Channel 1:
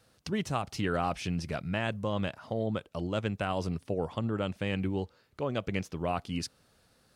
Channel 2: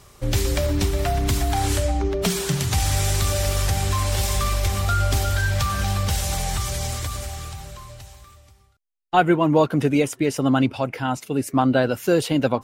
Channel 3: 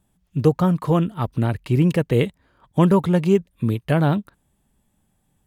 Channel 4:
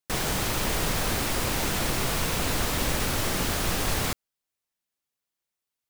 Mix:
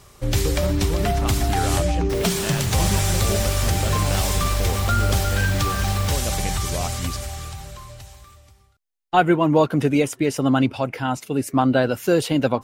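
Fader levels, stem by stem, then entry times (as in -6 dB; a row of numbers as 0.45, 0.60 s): +1.0, +0.5, -13.0, -7.0 dB; 0.70, 0.00, 0.00, 2.00 s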